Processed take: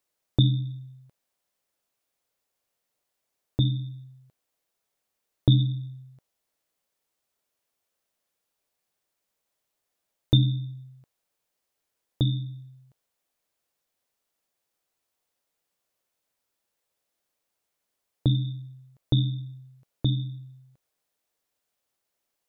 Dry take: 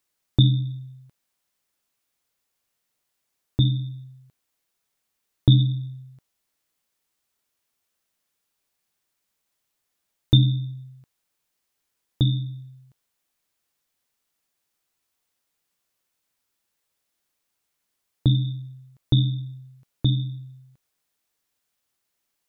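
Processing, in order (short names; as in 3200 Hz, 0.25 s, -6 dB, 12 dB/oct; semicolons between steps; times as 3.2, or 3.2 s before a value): bell 570 Hz +7 dB 1.2 oct; gain -4 dB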